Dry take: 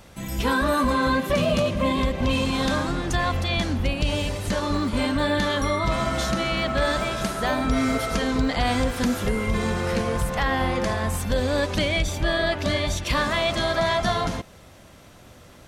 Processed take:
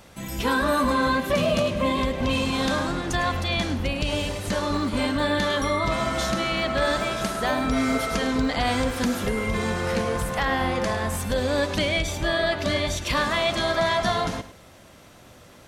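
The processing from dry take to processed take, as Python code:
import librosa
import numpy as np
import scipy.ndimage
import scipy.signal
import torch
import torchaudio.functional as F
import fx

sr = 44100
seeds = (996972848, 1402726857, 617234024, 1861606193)

y = fx.low_shelf(x, sr, hz=110.0, db=-6.0)
y = y + 10.0 ** (-13.5 / 20.0) * np.pad(y, (int(104 * sr / 1000.0), 0))[:len(y)]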